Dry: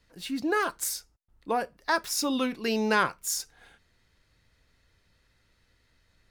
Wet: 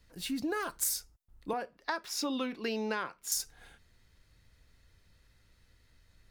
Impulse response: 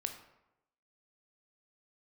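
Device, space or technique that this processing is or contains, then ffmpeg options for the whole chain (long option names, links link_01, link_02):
ASMR close-microphone chain: -filter_complex "[0:a]asettb=1/sr,asplit=3[link_01][link_02][link_03];[link_01]atrim=end=1.534[link_04];[link_02]atrim=start=1.53:end=3.32,asetpts=PTS-STARTPTS,afade=type=in:duration=0.004:curve=qsin,afade=type=out:start_time=1.786:duration=0.004:curve=qsin,acrossover=split=200 5100:gain=0.158 1 0.2[link_05][link_06][link_07];[link_05][link_06][link_07]amix=inputs=3:normalize=0[link_08];[link_03]atrim=start=3.316[link_09];[link_04][link_08]acrossfade=duration=0.004:curve1=hsin:curve2=qsin[link_10];[link_10][link_09]acrossfade=duration=0.004:curve1=qsin:curve2=hsin,lowshelf=frequency=150:gain=7.5,acompressor=threshold=-29dB:ratio=5,highshelf=frequency=7300:gain=7,volume=-2dB"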